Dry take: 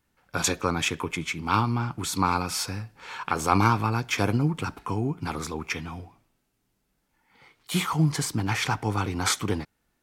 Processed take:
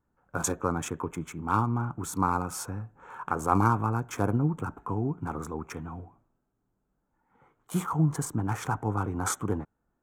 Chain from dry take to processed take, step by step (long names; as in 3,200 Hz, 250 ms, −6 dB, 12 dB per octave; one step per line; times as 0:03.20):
adaptive Wiener filter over 9 samples
flat-topped bell 3,100 Hz −14 dB
level −2 dB